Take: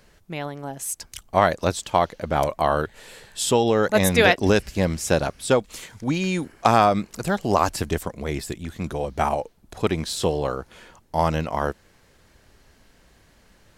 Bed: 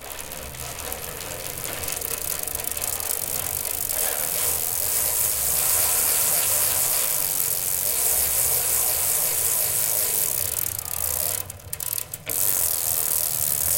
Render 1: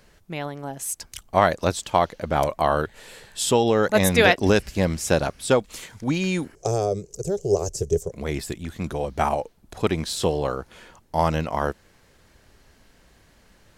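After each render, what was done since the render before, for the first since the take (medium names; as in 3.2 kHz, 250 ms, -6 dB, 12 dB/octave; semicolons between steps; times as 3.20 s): 6.55–8.12 s: FFT filter 160 Hz 0 dB, 250 Hz -21 dB, 410 Hz +8 dB, 980 Hz -21 dB, 1.8 kHz -23 dB, 4.1 kHz -15 dB, 6.3 kHz +6 dB, 11 kHz -9 dB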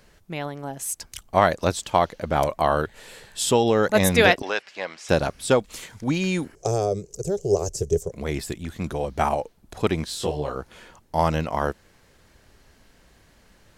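4.42–5.09 s: band-pass 790–3600 Hz; 10.05–10.56 s: detune thickener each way 32 cents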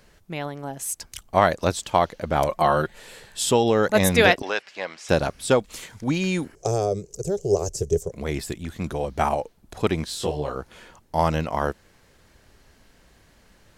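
2.49–2.98 s: comb 5.6 ms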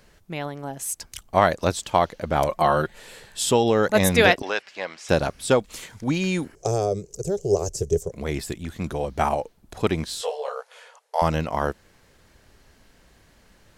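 10.21–11.22 s: brick-wall FIR band-pass 420–12000 Hz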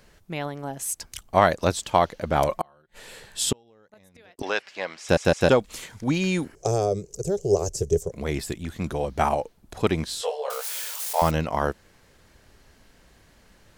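2.55–4.39 s: inverted gate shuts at -12 dBFS, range -37 dB; 5.01 s: stutter in place 0.16 s, 3 plays; 10.50–11.31 s: zero-crossing glitches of -23 dBFS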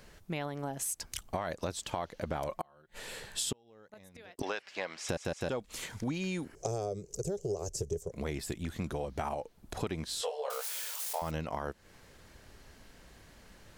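peak limiter -11.5 dBFS, peak gain reduction 8.5 dB; compression 5:1, threshold -33 dBFS, peak gain reduction 14.5 dB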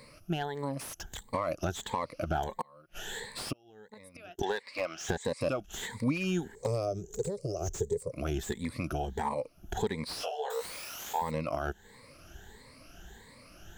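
drifting ripple filter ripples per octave 0.97, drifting +1.5 Hz, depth 18 dB; slew-rate limiter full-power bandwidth 66 Hz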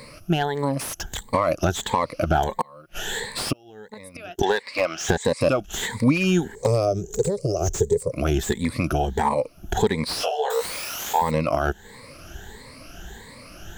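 trim +11 dB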